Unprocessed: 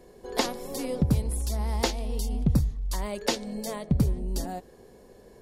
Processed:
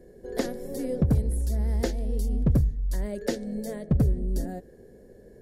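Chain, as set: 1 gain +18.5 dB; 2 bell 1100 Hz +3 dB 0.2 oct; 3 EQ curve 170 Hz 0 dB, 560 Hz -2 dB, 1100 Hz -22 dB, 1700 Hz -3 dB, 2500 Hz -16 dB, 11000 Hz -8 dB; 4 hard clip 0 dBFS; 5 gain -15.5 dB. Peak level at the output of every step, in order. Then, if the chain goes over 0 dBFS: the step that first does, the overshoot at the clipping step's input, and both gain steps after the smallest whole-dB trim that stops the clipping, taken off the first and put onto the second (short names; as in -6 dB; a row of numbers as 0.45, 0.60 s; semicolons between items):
+8.5, +8.5, +8.0, 0.0, -15.5 dBFS; step 1, 8.0 dB; step 1 +10.5 dB, step 5 -7.5 dB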